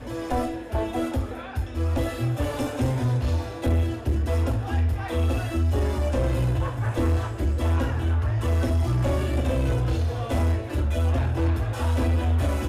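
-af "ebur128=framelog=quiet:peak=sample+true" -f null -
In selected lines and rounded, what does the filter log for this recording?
Integrated loudness:
  I:         -25.3 LUFS
  Threshold: -35.3 LUFS
Loudness range:
  LRA:         2.0 LU
  Threshold: -45.2 LUFS
  LRA low:   -26.6 LUFS
  LRA high:  -24.5 LUFS
Sample peak:
  Peak:      -17.2 dBFS
True peak:
  Peak:      -17.2 dBFS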